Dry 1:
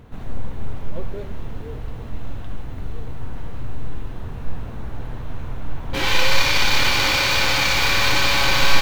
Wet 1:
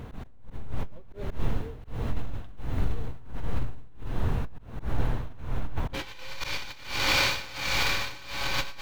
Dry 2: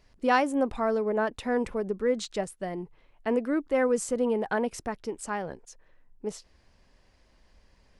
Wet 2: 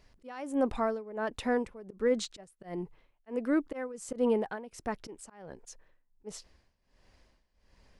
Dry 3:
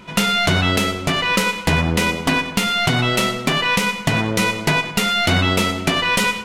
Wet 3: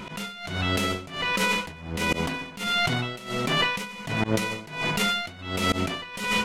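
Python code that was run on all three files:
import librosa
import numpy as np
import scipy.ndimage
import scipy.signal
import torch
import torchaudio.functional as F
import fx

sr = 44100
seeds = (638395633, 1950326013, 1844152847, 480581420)

y = fx.over_compress(x, sr, threshold_db=-23.0, ratio=-1.0)
y = fx.auto_swell(y, sr, attack_ms=112.0)
y = y * (1.0 - 0.87 / 2.0 + 0.87 / 2.0 * np.cos(2.0 * np.pi * 1.4 * (np.arange(len(y)) / sr)))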